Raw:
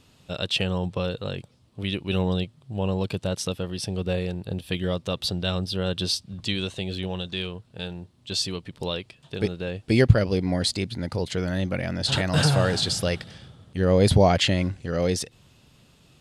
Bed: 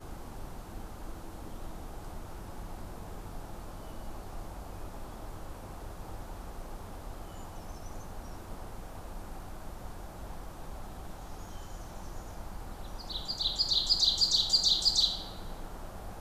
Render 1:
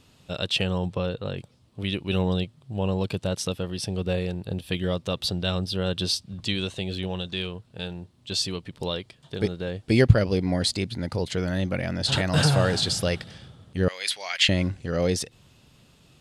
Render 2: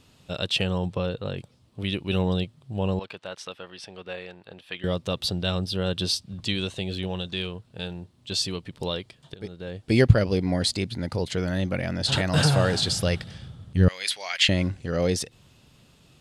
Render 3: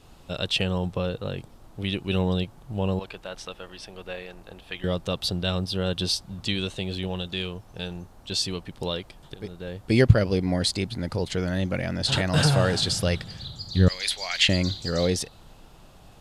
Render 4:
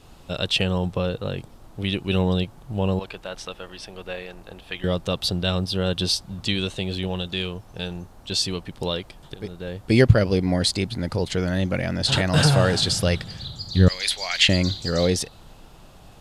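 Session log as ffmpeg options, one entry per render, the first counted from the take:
-filter_complex "[0:a]asettb=1/sr,asplit=3[a][b][c];[a]atrim=end=0.964[d];[b]atrim=start=0.96:end=1.37,asetpts=PTS-STARTPTS,afade=t=in:d=0.004:c=qsin,afade=t=out:st=0.406:d=0.004:c=qsin,highshelf=f=4.1k:g=-9[e];[c]atrim=start=1.366[f];[d][e]acrossfade=d=0.004:c1=hsin:c2=qsin[g];[g][f]acrossfade=d=0.004:c1=qsin:c2=hsin,asettb=1/sr,asplit=3[h][i][j];[h]atrim=end=8.884[k];[i]atrim=start=8.88:end=9.87,asetpts=PTS-STARTPTS,afade=t=in:d=0.004:c=qsin,afade=t=out:st=0.986:d=0.004:c=qsin,bandreject=f=2.6k:w=8.9[l];[j]atrim=start=9.866[m];[k][l]acrossfade=d=0.004:c1=hsin:c2=qsin[n];[n][m]acrossfade=d=0.004:c1=qsin:c2=hsin,asettb=1/sr,asplit=3[o][p][q];[o]atrim=end=13.884[r];[p]atrim=start=13.88:end=14.49,asetpts=PTS-STARTPTS,afade=t=in:d=0.004:c=qsin,afade=t=out:st=0.606:d=0.004:c=qsin,highpass=f=2.1k:t=q:w=1.6[s];[q]atrim=start=14.486[t];[r][s]acrossfade=d=0.004:c1=hsin:c2=qsin[u];[u][t]acrossfade=d=0.004:c1=qsin:c2=hsin"
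-filter_complex "[0:a]asettb=1/sr,asplit=3[a][b][c];[a]atrim=end=2.994[d];[b]atrim=start=2.99:end=4.84,asetpts=PTS-STARTPTS,afade=t=in:d=0.004:c=qsin,afade=t=out:st=1.846:d=0.004:c=qsin,bandpass=f=1.6k:t=q:w=0.89[e];[c]atrim=start=4.836[f];[d][e]acrossfade=d=0.004:c1=hsin:c2=qsin[g];[g][f]acrossfade=d=0.004:c1=qsin:c2=hsin,asettb=1/sr,asplit=3[h][i][j];[h]atrim=end=12.784[k];[i]atrim=start=12.78:end=14.05,asetpts=PTS-STARTPTS,afade=t=in:d=0.004:c=qsin,afade=t=out:st=1.266:d=0.004:c=qsin,asubboost=boost=6.5:cutoff=230[l];[j]atrim=start=14.046[m];[k][l]acrossfade=d=0.004:c1=hsin:c2=qsin[n];[n][m]acrossfade=d=0.004:c1=qsin:c2=hsin,asplit=2[o][p];[o]atrim=end=9.34,asetpts=PTS-STARTPTS,afade=t=out:st=9.336:d=0.004:c=hsin:silence=0.125893[q];[p]atrim=start=9.34,asetpts=PTS-STARTPTS,afade=t=in:d=0.64:silence=0.125893[r];[q][r]concat=n=2:v=0:a=1"
-filter_complex "[1:a]volume=-9dB[a];[0:a][a]amix=inputs=2:normalize=0"
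-af "volume=3dB,alimiter=limit=-1dB:level=0:latency=1"

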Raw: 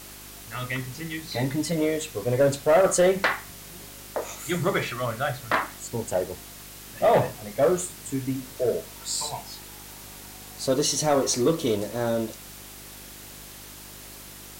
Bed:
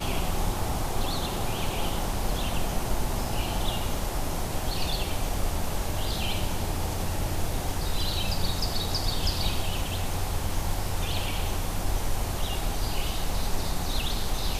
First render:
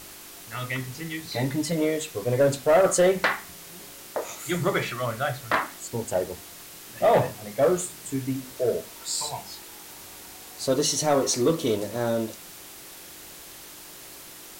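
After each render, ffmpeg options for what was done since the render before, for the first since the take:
-af "bandreject=f=50:t=h:w=4,bandreject=f=100:t=h:w=4,bandreject=f=150:t=h:w=4,bandreject=f=200:t=h:w=4,bandreject=f=250:t=h:w=4"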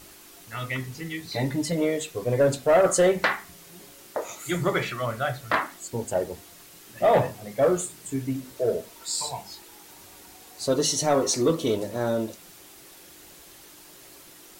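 -af "afftdn=nr=6:nf=-44"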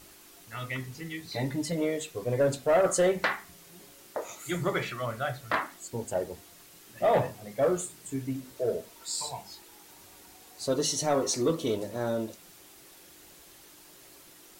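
-af "volume=-4.5dB"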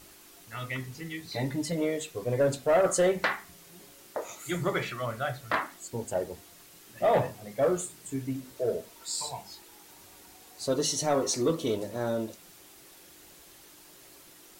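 -af anull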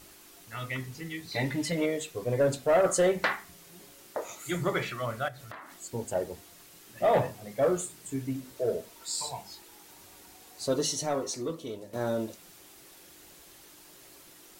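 -filter_complex "[0:a]asettb=1/sr,asplit=3[a][b][c];[a]atrim=end=1.354[d];[b]atrim=start=1.35:end=1.86,asetpts=PTS-STARTPTS,afade=t=in:d=0.004:c=qsin,afade=t=out:st=0.506:d=0.004:c=qsin,equalizer=f=2.3k:t=o:w=1.4:g=8[e];[c]atrim=start=1.856[f];[d][e]acrossfade=d=0.004:c1=hsin:c2=qsin[g];[g][f]acrossfade=d=0.004:c1=qsin:c2=hsin,asettb=1/sr,asplit=3[h][i][j];[h]atrim=end=5.284[k];[i]atrim=start=5.28:end=5.72,asetpts=PTS-STARTPTS,afade=t=in:d=0.004:c=qsin,afade=t=out:st=0.436:d=0.004:c=qsin,acompressor=threshold=-42dB:ratio=6:attack=3.2:release=140:knee=1:detection=peak[l];[j]atrim=start=5.716[m];[k][l]acrossfade=d=0.004:c1=hsin:c2=qsin[n];[n][m]acrossfade=d=0.004:c1=qsin:c2=hsin,asplit=2[o][p];[o]atrim=end=11.93,asetpts=PTS-STARTPTS,afade=t=out:st=10.75:d=1.18:c=qua:silence=0.316228[q];[p]atrim=start=11.93,asetpts=PTS-STARTPTS,afade=t=in:d=0.004:c=hsin:silence=0.316228[r];[q][r]concat=n=2:v=0:a=1"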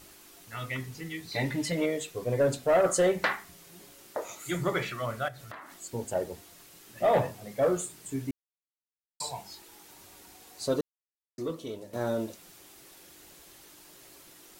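-filter_complex "[0:a]asplit=5[a][b][c][d][e];[a]atrim=end=8.31,asetpts=PTS-STARTPTS,afade=t=out:st=8.306:d=0.004:c=hsin[f];[b]atrim=start=8.31:end=9.2,asetpts=PTS-STARTPTS,volume=0[g];[c]atrim=start=9.2:end=10.81,asetpts=PTS-STARTPTS,afade=t=in:d=0.004:c=hsin,afade=t=out:st=1.606:d=0.004:c=hsin[h];[d]atrim=start=10.81:end=11.38,asetpts=PTS-STARTPTS,volume=0[i];[e]atrim=start=11.38,asetpts=PTS-STARTPTS,afade=t=in:d=0.004:c=hsin[j];[f][g][h][i][j]concat=n=5:v=0:a=1"

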